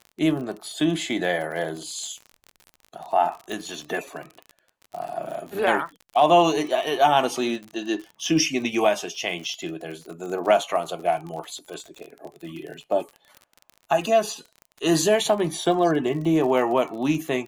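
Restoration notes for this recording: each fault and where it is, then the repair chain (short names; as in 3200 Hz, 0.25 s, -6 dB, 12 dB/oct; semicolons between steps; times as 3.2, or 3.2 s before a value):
crackle 43/s -32 dBFS
3.52 pop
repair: de-click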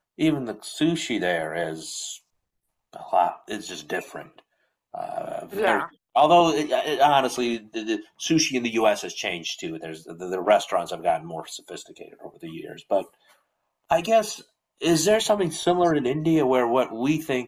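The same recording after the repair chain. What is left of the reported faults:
none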